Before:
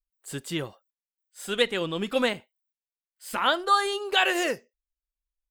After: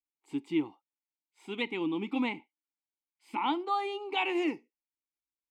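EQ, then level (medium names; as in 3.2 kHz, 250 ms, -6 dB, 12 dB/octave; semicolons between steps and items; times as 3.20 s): vowel filter u; +9.0 dB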